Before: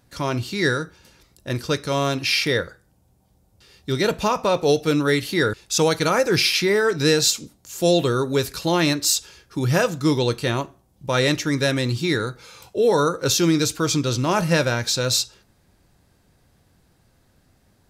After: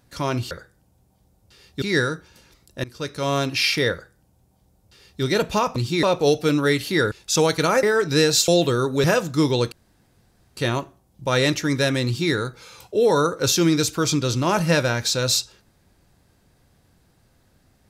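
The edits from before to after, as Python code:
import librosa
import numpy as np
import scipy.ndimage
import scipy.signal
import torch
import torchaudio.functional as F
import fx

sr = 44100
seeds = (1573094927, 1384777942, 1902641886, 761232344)

y = fx.edit(x, sr, fx.fade_in_from(start_s=1.53, length_s=0.51, floor_db=-19.0),
    fx.duplicate(start_s=2.61, length_s=1.31, to_s=0.51),
    fx.cut(start_s=6.25, length_s=0.47),
    fx.cut(start_s=7.37, length_s=0.48),
    fx.cut(start_s=8.41, length_s=1.3),
    fx.insert_room_tone(at_s=10.39, length_s=0.85),
    fx.duplicate(start_s=11.87, length_s=0.27, to_s=4.45), tone=tone)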